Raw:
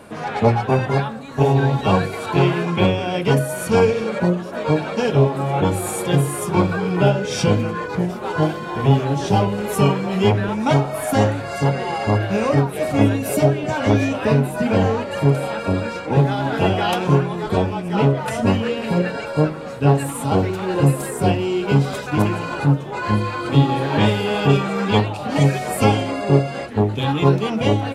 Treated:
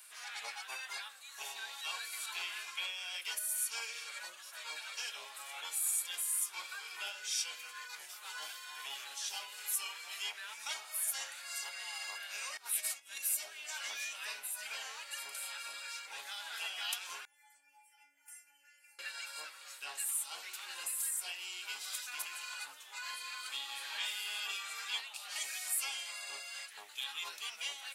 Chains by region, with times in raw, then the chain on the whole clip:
12.57–13.18 bell 9600 Hz +5 dB 2.2 oct + negative-ratio compressor -22 dBFS, ratio -0.5
17.25–18.99 compressor 4:1, threshold -18 dBFS + fixed phaser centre 770 Hz, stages 8 + metallic resonator 280 Hz, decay 0.41 s, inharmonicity 0.002
whole clip: HPF 1400 Hz 12 dB/oct; differentiator; compressor 1.5:1, threshold -40 dBFS

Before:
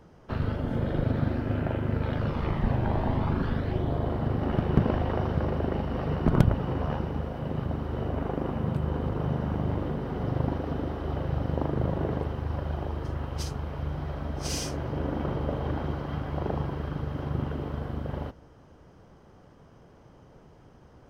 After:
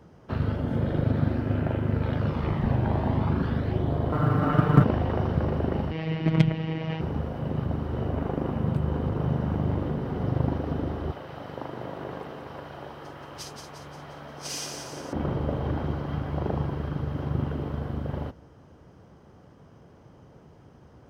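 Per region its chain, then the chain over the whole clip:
4.12–4.84 bell 1300 Hz +13.5 dB 0.48 oct + comb 6.7 ms, depth 93% + short-mantissa float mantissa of 6-bit
5.91–7.01 resonant high shelf 1700 Hz +7 dB, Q 3 + robotiser 160 Hz + LPF 4700 Hz
11.11–15.13 HPF 930 Hz 6 dB/oct + split-band echo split 770 Hz, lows 0.255 s, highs 0.176 s, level -6 dB
whole clip: HPF 69 Hz; low shelf 270 Hz +4 dB

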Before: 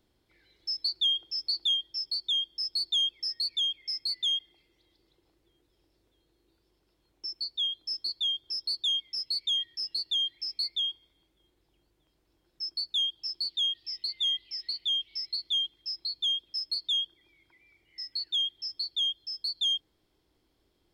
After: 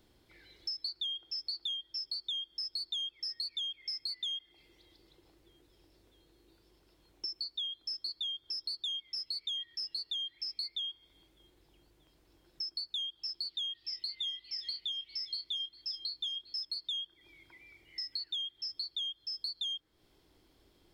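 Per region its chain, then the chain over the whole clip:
13.87–16.65 doubler 25 ms -10.5 dB + echo 0.402 s -22.5 dB
whole clip: de-hum 62.65 Hz, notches 22; dynamic EQ 1500 Hz, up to +6 dB, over -50 dBFS, Q 1.3; compressor 6:1, threshold -43 dBFS; gain +6 dB

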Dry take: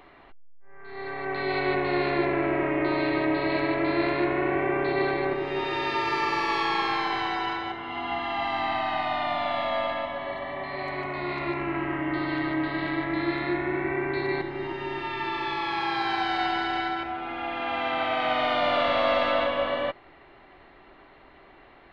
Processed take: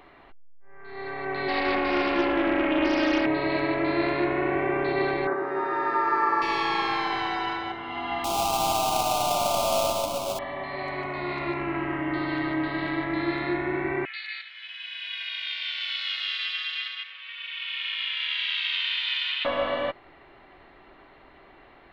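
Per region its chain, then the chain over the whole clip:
1.48–3.26 comb 3.7 ms, depth 80% + Doppler distortion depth 0.31 ms
5.27–6.42 HPF 230 Hz + resonant high shelf 2100 Hz -12.5 dB, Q 3
8.24–10.39 half-waves squared off + Butterworth band-stop 1800 Hz, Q 1.3 + notches 50/100/150/200/250/300/350/400 Hz
14.05–19.45 inverse Chebyshev high-pass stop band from 440 Hz, stop band 70 dB + bell 3100 Hz +11.5 dB + ring modulator 220 Hz
whole clip: dry

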